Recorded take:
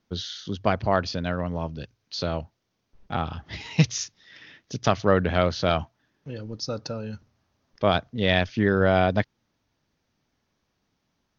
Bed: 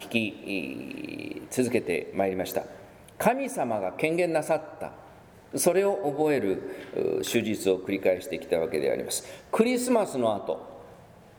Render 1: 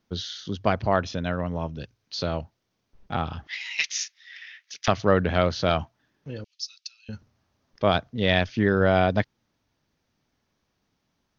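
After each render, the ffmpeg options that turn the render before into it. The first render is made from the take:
-filter_complex "[0:a]asettb=1/sr,asplit=3[a][b][c];[a]atrim=end=0.934[d];[b]atrim=start=0.93:end=1.79,asetpts=PTS-STARTPTS,afade=t=in:d=0.004:c=qsin,afade=t=out:st=0.856:d=0.004:c=qsin,asuperstop=centerf=4600:order=4:qfactor=5.7[e];[c]atrim=start=1.786[f];[d][e]acrossfade=d=0.004:c1=hsin:c2=qsin[g];[g][f]acrossfade=d=0.004:c1=qsin:c2=hsin,asettb=1/sr,asplit=3[h][i][j];[h]atrim=end=3.474[k];[i]atrim=start=3.47:end=4.88,asetpts=PTS-STARTPTS,afade=t=in:d=0.004:c=qsin,afade=t=out:st=1.406:d=0.004:c=qsin,highpass=f=2k:t=q:w=2.2[l];[j]atrim=start=4.876[m];[k][l]acrossfade=d=0.004:c1=hsin:c2=qsin[n];[n][m]acrossfade=d=0.004:c1=qsin:c2=hsin,asettb=1/sr,asplit=3[o][p][q];[o]atrim=end=6.444[r];[p]atrim=start=6.44:end=7.09,asetpts=PTS-STARTPTS,afade=t=in:d=0.004:c=qsin,afade=t=out:st=0.646:d=0.004:c=qsin,asuperpass=centerf=4500:order=8:qfactor=0.84[s];[q]atrim=start=7.086[t];[r][s]acrossfade=d=0.004:c1=hsin:c2=qsin[u];[u][t]acrossfade=d=0.004:c1=qsin:c2=hsin"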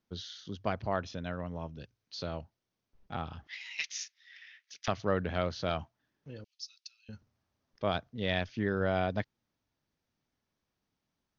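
-af "volume=-10dB"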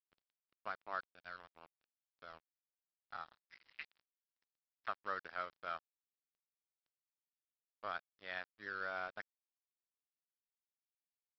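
-af "bandpass=f=1.4k:t=q:w=3:csg=0,aresample=11025,aeval=exprs='sgn(val(0))*max(abs(val(0))-0.00266,0)':c=same,aresample=44100"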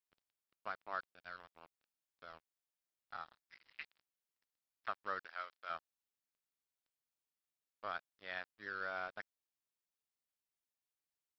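-filter_complex "[0:a]asettb=1/sr,asplit=3[a][b][c];[a]atrim=end=5.254[d];[b]atrim=start=5.25:end=5.7,asetpts=PTS-STARTPTS,afade=t=in:d=0.004:c=qsin,afade=t=out:st=0.446:d=0.004:c=qsin,highpass=f=1.2k:p=1[e];[c]atrim=start=5.696[f];[d][e]acrossfade=d=0.004:c1=hsin:c2=qsin[g];[g][f]acrossfade=d=0.004:c1=qsin:c2=hsin"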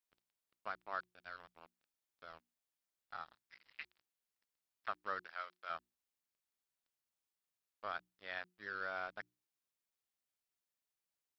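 -af "bandreject=f=60:t=h:w=6,bandreject=f=120:t=h:w=6,bandreject=f=180:t=h:w=6,bandreject=f=240:t=h:w=6,bandreject=f=300:t=h:w=6,bandreject=f=360:t=h:w=6"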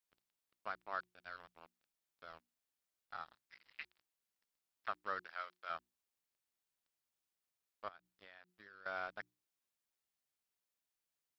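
-filter_complex "[0:a]asettb=1/sr,asplit=3[a][b][c];[a]atrim=end=7.884[d];[b]atrim=start=7.88:end=8.86,asetpts=PTS-STARTPTS,afade=t=in:d=0.004:c=qsin,afade=t=out:st=0.976:d=0.004:c=qsin,acompressor=threshold=-54dB:ratio=12:attack=3.2:release=140:knee=1:detection=peak[e];[c]atrim=start=8.856[f];[d][e]acrossfade=d=0.004:c1=hsin:c2=qsin[g];[g][f]acrossfade=d=0.004:c1=qsin:c2=hsin"

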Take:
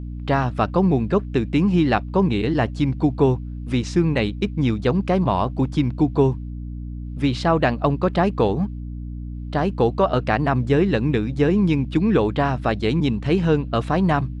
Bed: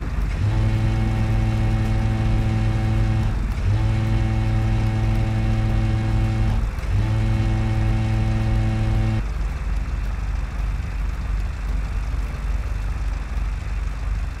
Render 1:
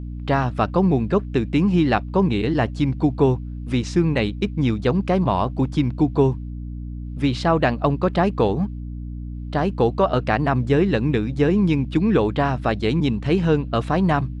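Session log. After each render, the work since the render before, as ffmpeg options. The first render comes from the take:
-af anull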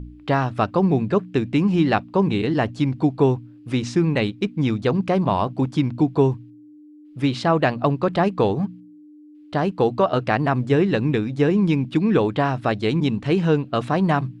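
-af "bandreject=f=60:t=h:w=4,bandreject=f=120:t=h:w=4,bandreject=f=180:t=h:w=4,bandreject=f=240:t=h:w=4"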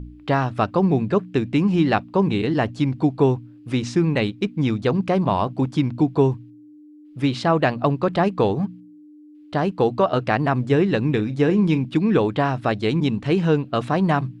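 -filter_complex "[0:a]asettb=1/sr,asplit=3[a][b][c];[a]atrim=end=11.114[d];[b]atrim=start=11.11:end=11.81,asetpts=PTS-STARTPTS,afade=t=in:d=0.004:c=qsin,afade=t=out:st=0.696:d=0.004:c=qsin,asplit=2[e][f];[f]adelay=38,volume=-13.5dB[g];[e][g]amix=inputs=2:normalize=0,atrim=end_sample=30870[h];[c]atrim=start=11.806[i];[d][h]acrossfade=d=0.004:c1=hsin:c2=qsin[j];[j][i]acrossfade=d=0.004:c1=qsin:c2=hsin"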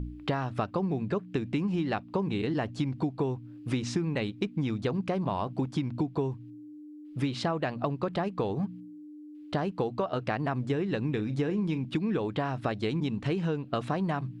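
-af "acompressor=threshold=-26dB:ratio=10"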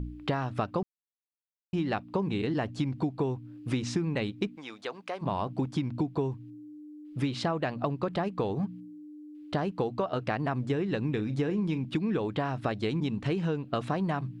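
-filter_complex "[0:a]asplit=3[a][b][c];[a]afade=t=out:st=4.55:d=0.02[d];[b]highpass=640,afade=t=in:st=4.55:d=0.02,afade=t=out:st=5.21:d=0.02[e];[c]afade=t=in:st=5.21:d=0.02[f];[d][e][f]amix=inputs=3:normalize=0,asplit=3[g][h][i];[g]atrim=end=0.83,asetpts=PTS-STARTPTS,afade=t=out:st=0.826:d=0.004:c=hsin[j];[h]atrim=start=0.83:end=1.73,asetpts=PTS-STARTPTS,volume=0[k];[i]atrim=start=1.73,asetpts=PTS-STARTPTS,afade=t=in:d=0.004:c=hsin[l];[j][k][l]concat=n=3:v=0:a=1"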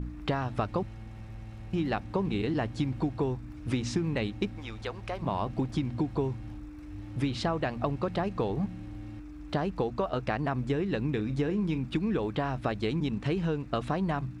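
-filter_complex "[1:a]volume=-23dB[a];[0:a][a]amix=inputs=2:normalize=0"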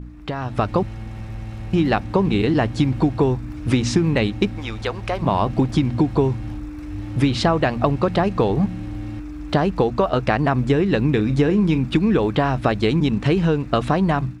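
-af "dynaudnorm=f=340:g=3:m=12dB"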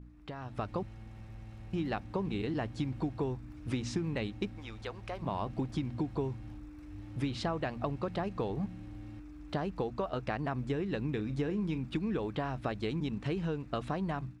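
-af "volume=-16dB"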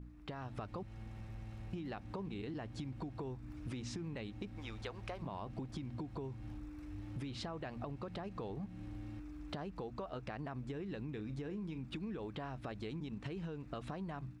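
-af "alimiter=level_in=2dB:limit=-24dB:level=0:latency=1,volume=-2dB,acompressor=threshold=-40dB:ratio=6"

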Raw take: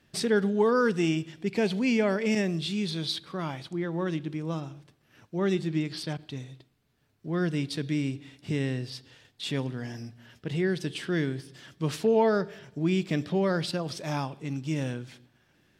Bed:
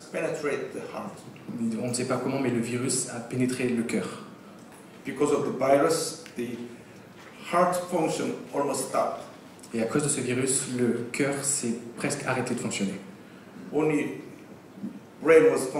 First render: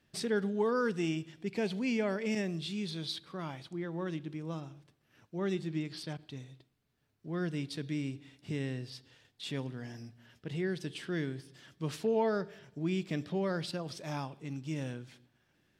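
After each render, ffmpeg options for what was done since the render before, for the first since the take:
-af "volume=-7dB"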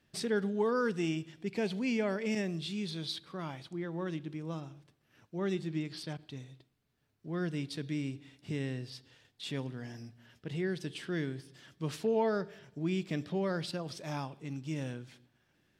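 -af anull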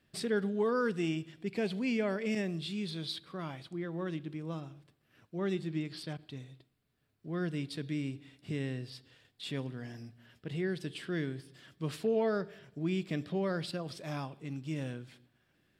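-af "equalizer=f=6.1k:t=o:w=0.32:g=-6.5,bandreject=f=880:w=12"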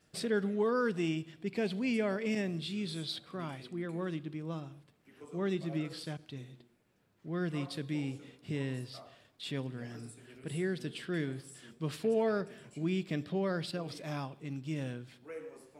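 -filter_complex "[1:a]volume=-27.5dB[a];[0:a][a]amix=inputs=2:normalize=0"

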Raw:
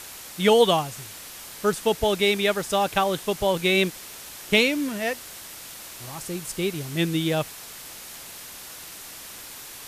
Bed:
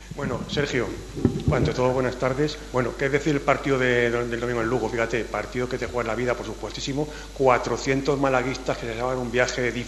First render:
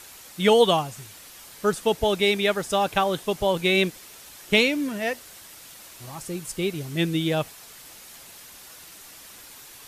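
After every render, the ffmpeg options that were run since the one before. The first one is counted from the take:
-af "afftdn=nr=6:nf=-41"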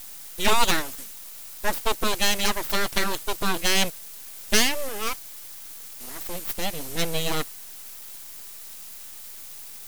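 -af "aeval=exprs='abs(val(0))':c=same,crystalizer=i=1.5:c=0"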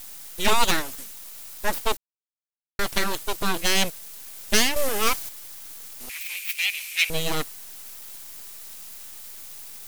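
-filter_complex "[0:a]asettb=1/sr,asplit=3[a][b][c];[a]atrim=end=4.764[d];[b]atrim=start=4.76:end=5.29,asetpts=PTS-STARTPTS,afade=t=in:d=0.004:c=qsin,afade=t=out:st=0.526:d=0.004:c=qsin,acontrast=68[e];[c]atrim=start=5.286[f];[d][e]acrossfade=d=0.004:c1=hsin:c2=qsin[g];[g][f]acrossfade=d=0.004:c1=qsin:c2=hsin,asettb=1/sr,asplit=3[h][i][j];[h]atrim=end=6.094[k];[i]atrim=start=6.09:end=7.1,asetpts=PTS-STARTPTS,afade=t=in:d=0.004:c=qsin,afade=t=out:st=1.006:d=0.004:c=qsin,highpass=f=2.4k:t=q:w=9[l];[j]atrim=start=7.096[m];[k][l]acrossfade=d=0.004:c1=hsin:c2=qsin[n];[n][m]acrossfade=d=0.004:c1=qsin:c2=hsin,asplit=3[o][p][q];[o]atrim=end=1.97,asetpts=PTS-STARTPTS,afade=t=out:st=1.966:d=0.004:c=hsin[r];[p]atrim=start=1.97:end=2.79,asetpts=PTS-STARTPTS,volume=0[s];[q]atrim=start=2.79,asetpts=PTS-STARTPTS,afade=t=in:d=0.004:c=hsin[t];[r][s][t]concat=n=3:v=0:a=1"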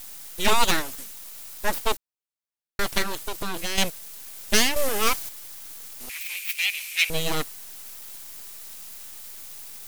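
-filter_complex "[0:a]asettb=1/sr,asplit=3[a][b][c];[a]atrim=end=3.024[d];[b]atrim=start=3.02:end=3.78,asetpts=PTS-STARTPTS,afade=t=in:d=0.004:c=qsin,afade=t=out:st=0.756:d=0.004:c=qsin,acompressor=threshold=-23dB:ratio=6:attack=3.2:release=140:knee=1:detection=peak[e];[c]atrim=start=3.776[f];[d][e]acrossfade=d=0.004:c1=hsin:c2=qsin[g];[g][f]acrossfade=d=0.004:c1=qsin:c2=hsin"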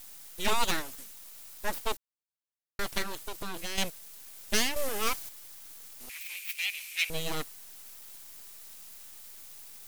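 -af "volume=-7.5dB"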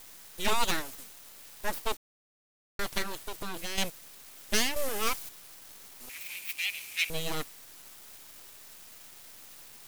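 -af "aeval=exprs='val(0)*gte(abs(val(0)),0.00596)':c=same"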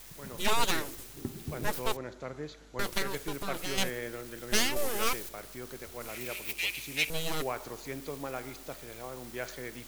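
-filter_complex "[1:a]volume=-17dB[a];[0:a][a]amix=inputs=2:normalize=0"

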